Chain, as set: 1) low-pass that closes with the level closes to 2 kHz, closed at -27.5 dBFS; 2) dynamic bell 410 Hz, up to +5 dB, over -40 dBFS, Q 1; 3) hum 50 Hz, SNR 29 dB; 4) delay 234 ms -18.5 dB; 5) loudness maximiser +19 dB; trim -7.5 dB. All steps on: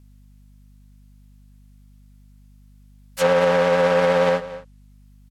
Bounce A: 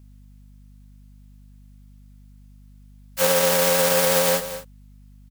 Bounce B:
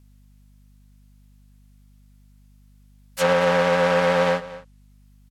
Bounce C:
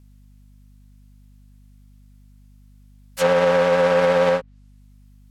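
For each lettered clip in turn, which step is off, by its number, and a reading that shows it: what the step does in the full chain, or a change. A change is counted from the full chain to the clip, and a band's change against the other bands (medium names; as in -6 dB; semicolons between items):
1, 8 kHz band +20.0 dB; 2, 500 Hz band -3.0 dB; 4, momentary loudness spread change -2 LU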